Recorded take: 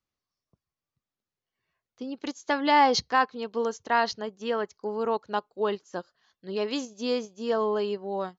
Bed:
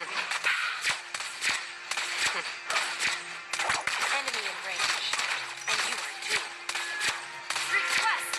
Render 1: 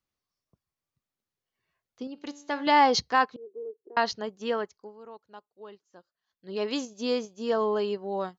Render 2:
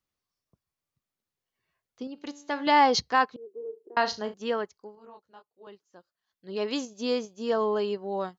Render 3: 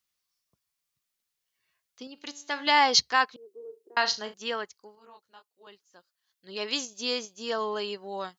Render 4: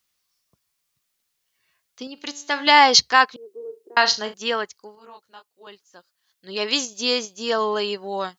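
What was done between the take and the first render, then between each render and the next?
2.07–2.67 resonator 96 Hz, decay 0.92 s, mix 50%; 3.36–3.97 Butterworth band-pass 380 Hz, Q 4.2; 4.52–6.67 dip -18.5 dB, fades 0.41 s
3.57–4.34 flutter echo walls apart 6.4 m, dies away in 0.24 s; 4.95–5.67 detuned doubles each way 32 cents
tilt shelf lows -8 dB, about 1200 Hz
gain +8 dB; limiter -1 dBFS, peak gain reduction 2.5 dB

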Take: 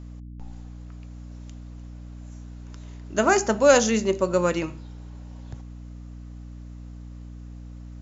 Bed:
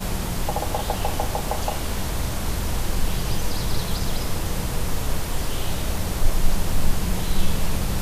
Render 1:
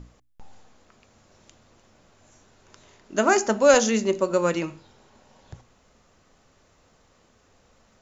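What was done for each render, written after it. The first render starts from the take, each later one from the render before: notches 60/120/180/240/300 Hz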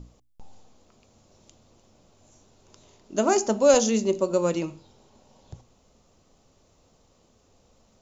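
bell 1700 Hz -11.5 dB 1.1 oct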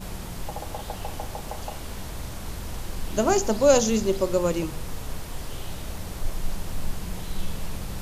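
add bed -9 dB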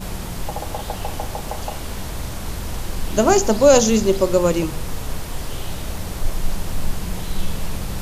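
gain +6.5 dB; limiter -1 dBFS, peak gain reduction 2.5 dB

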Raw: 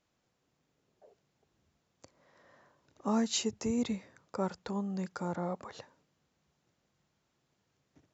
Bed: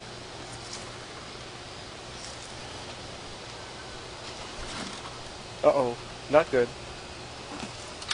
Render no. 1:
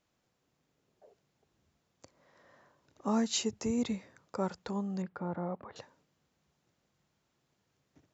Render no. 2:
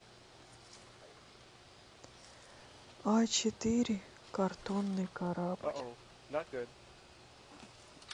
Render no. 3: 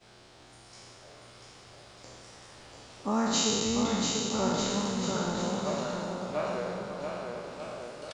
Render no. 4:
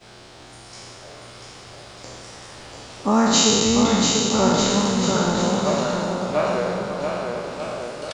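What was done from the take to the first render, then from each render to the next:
5.02–5.76 air absorption 490 m
add bed -17 dB
spectral trails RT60 2.26 s; bouncing-ball echo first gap 0.69 s, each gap 0.8×, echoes 5
gain +10.5 dB

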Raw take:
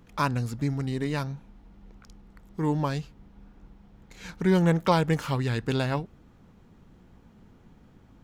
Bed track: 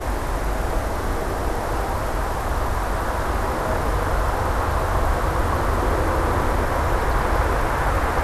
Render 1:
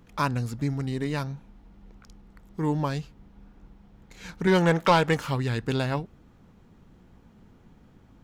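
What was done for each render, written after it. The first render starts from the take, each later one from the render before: 4.47–5.17 overdrive pedal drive 14 dB, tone 5100 Hz, clips at -8.5 dBFS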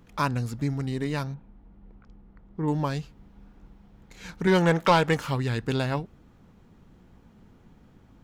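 1.34–2.68 tape spacing loss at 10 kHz 33 dB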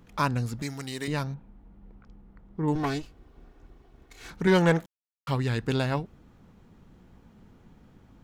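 0.62–1.08 tilt +3.5 dB/oct; 2.75–4.31 minimum comb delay 2.7 ms; 4.86–5.27 mute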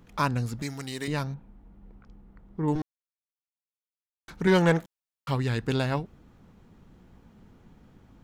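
2.82–4.28 mute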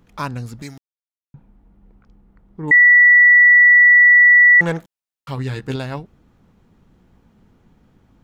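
0.78–1.34 mute; 2.71–4.61 bleep 1950 Hz -6 dBFS; 5.36–5.76 doubler 15 ms -5 dB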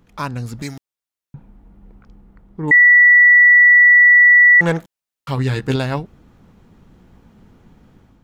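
AGC gain up to 6 dB; limiter -5.5 dBFS, peak gain reduction 3 dB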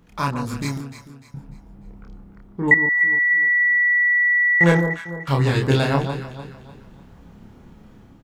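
doubler 29 ms -3 dB; on a send: echo with dull and thin repeats by turns 0.149 s, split 1200 Hz, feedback 59%, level -7 dB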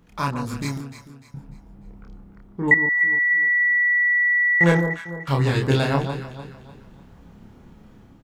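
gain -1.5 dB

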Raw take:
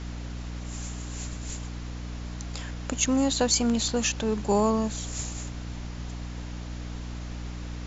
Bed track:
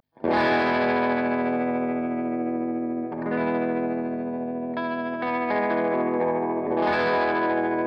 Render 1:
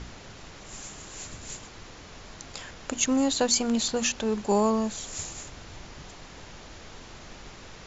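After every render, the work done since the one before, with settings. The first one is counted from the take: notches 60/120/180/240/300 Hz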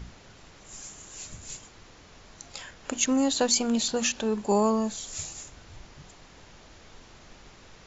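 noise print and reduce 6 dB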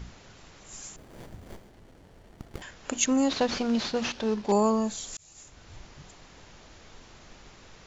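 0.96–2.62 running maximum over 33 samples; 3.29–4.52 CVSD 32 kbps; 5.17–5.74 fade in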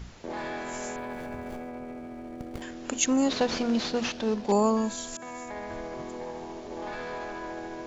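add bed track -14 dB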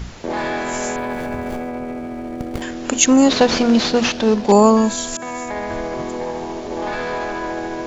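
gain +12 dB; limiter -1 dBFS, peak gain reduction 1 dB

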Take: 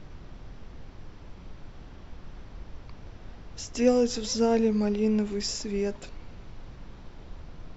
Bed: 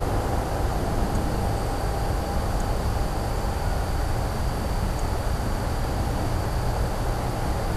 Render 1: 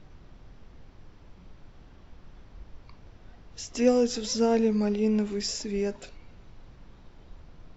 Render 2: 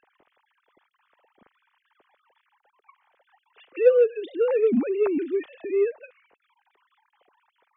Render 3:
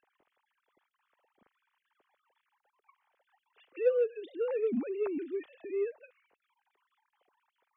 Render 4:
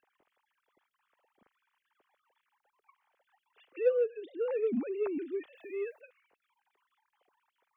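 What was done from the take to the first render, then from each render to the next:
noise print and reduce 6 dB
sine-wave speech; in parallel at -5 dB: soft clip -18.5 dBFS, distortion -12 dB
gain -10 dB
3.92–4.46 air absorption 190 m; 5.55–6.01 tilt +3 dB/oct

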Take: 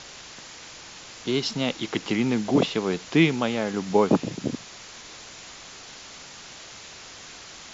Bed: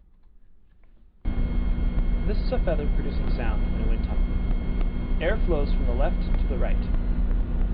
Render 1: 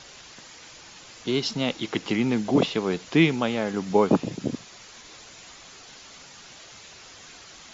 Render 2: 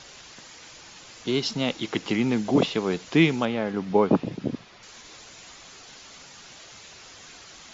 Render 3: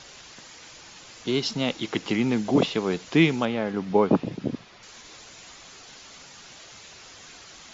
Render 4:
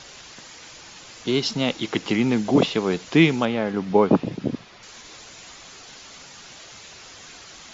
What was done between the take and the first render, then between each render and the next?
denoiser 6 dB, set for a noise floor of -44 dBFS
3.45–4.83 air absorption 170 m
nothing audible
gain +3 dB

